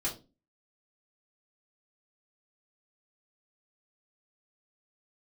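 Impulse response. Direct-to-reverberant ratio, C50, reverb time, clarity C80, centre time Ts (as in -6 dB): -6.0 dB, 10.5 dB, 0.30 s, 18.0 dB, 20 ms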